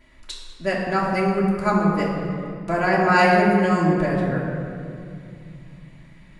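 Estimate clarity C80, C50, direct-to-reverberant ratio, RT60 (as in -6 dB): 2.0 dB, 1.0 dB, -6.5 dB, 2.4 s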